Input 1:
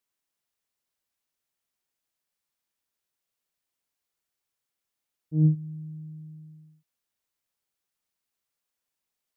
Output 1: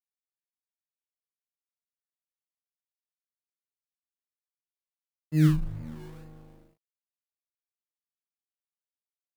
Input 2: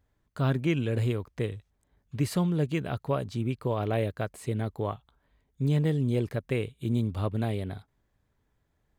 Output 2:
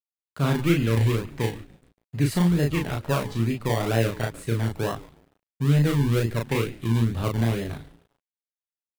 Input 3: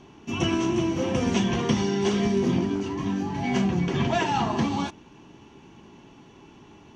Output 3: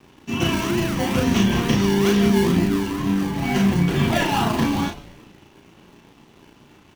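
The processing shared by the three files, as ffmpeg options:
-filter_complex "[0:a]asplit=6[a][b][c][d][e][f];[b]adelay=142,afreqshift=-130,volume=-17dB[g];[c]adelay=284,afreqshift=-260,volume=-22.7dB[h];[d]adelay=426,afreqshift=-390,volume=-28.4dB[i];[e]adelay=568,afreqshift=-520,volume=-34dB[j];[f]adelay=710,afreqshift=-650,volume=-39.7dB[k];[a][g][h][i][j][k]amix=inputs=6:normalize=0,acrossover=split=270|790[l][m][n];[m]acrusher=samples=27:mix=1:aa=0.000001:lfo=1:lforange=16.2:lforate=2.2[o];[l][o][n]amix=inputs=3:normalize=0,equalizer=f=6k:t=o:w=0.77:g=-2,aeval=exprs='sgn(val(0))*max(abs(val(0))-0.00211,0)':c=same,asplit=2[p][q];[q]adelay=35,volume=-3dB[r];[p][r]amix=inputs=2:normalize=0,volume=3.5dB"

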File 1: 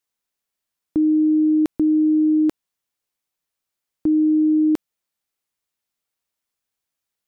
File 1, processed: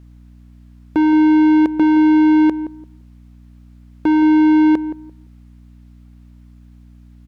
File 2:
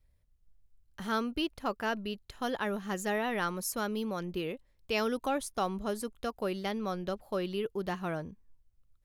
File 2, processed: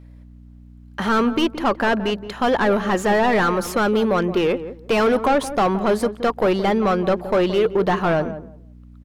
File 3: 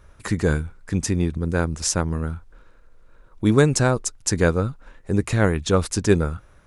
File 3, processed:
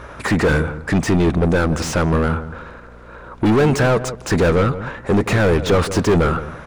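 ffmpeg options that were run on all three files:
-filter_complex "[0:a]asplit=2[a][b];[b]highpass=f=720:p=1,volume=38dB,asoftclip=type=tanh:threshold=-2dB[c];[a][c]amix=inputs=2:normalize=0,lowpass=f=1.1k:p=1,volume=-6dB,aeval=exprs='val(0)+0.0141*(sin(2*PI*60*n/s)+sin(2*PI*2*60*n/s)/2+sin(2*PI*3*60*n/s)/3+sin(2*PI*4*60*n/s)/4+sin(2*PI*5*60*n/s)/5)':c=same,asplit=2[d][e];[e]adelay=171,lowpass=f=880:p=1,volume=-11dB,asplit=2[f][g];[g]adelay=171,lowpass=f=880:p=1,volume=0.21,asplit=2[h][i];[i]adelay=171,lowpass=f=880:p=1,volume=0.21[j];[d][f][h][j]amix=inputs=4:normalize=0,volume=-4.5dB"

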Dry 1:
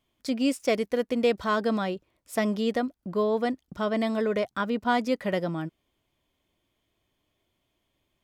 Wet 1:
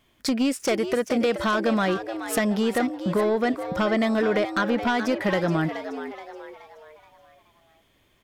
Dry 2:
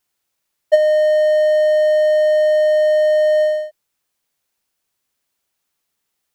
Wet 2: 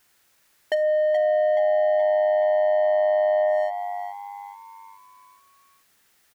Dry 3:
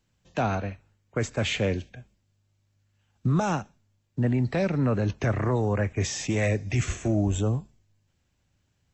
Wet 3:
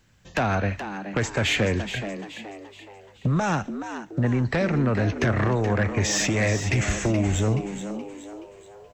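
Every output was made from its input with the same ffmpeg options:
-filter_complex "[0:a]equalizer=f=1.7k:w=2:g=5.5,acompressor=threshold=-29dB:ratio=6,aeval=exprs='0.112*sin(PI/2*1.78*val(0)/0.112)':c=same,asplit=2[a][b];[b]asplit=5[c][d][e][f][g];[c]adelay=425,afreqshift=99,volume=-10dB[h];[d]adelay=850,afreqshift=198,volume=-17.3dB[i];[e]adelay=1275,afreqshift=297,volume=-24.7dB[j];[f]adelay=1700,afreqshift=396,volume=-32dB[k];[g]adelay=2125,afreqshift=495,volume=-39.3dB[l];[h][i][j][k][l]amix=inputs=5:normalize=0[m];[a][m]amix=inputs=2:normalize=0,volume=2dB"

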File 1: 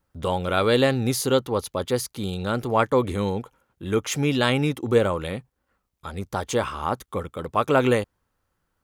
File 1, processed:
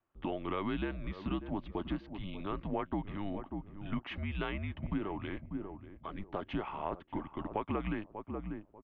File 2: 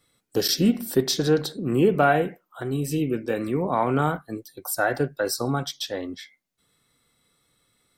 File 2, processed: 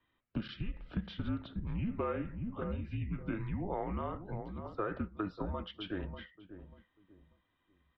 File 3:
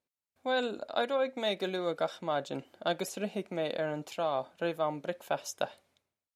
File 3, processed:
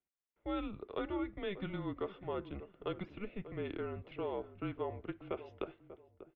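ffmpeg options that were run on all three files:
-filter_complex "[0:a]asplit=2[a][b];[b]adelay=591,lowpass=f=800:p=1,volume=-12dB,asplit=2[c][d];[d]adelay=591,lowpass=f=800:p=1,volume=0.33,asplit=2[e][f];[f]adelay=591,lowpass=f=800:p=1,volume=0.33[g];[a][c][e][g]amix=inputs=4:normalize=0,acompressor=threshold=-25dB:ratio=6,highpass=f=210:t=q:w=0.5412,highpass=f=210:t=q:w=1.307,lowpass=f=3.2k:t=q:w=0.5176,lowpass=f=3.2k:t=q:w=0.7071,lowpass=f=3.2k:t=q:w=1.932,afreqshift=-200,volume=-6.5dB"

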